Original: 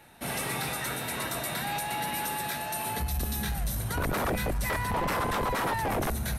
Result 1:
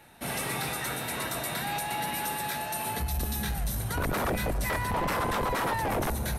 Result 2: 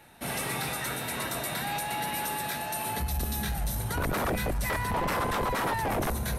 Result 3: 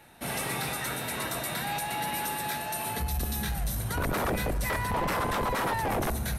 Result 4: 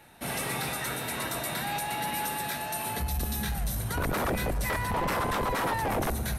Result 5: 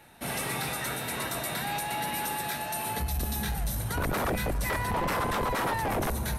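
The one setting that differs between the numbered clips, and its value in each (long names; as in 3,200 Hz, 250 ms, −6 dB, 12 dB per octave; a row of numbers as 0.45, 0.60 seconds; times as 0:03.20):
delay with a band-pass on its return, delay time: 272, 939, 66, 110, 572 milliseconds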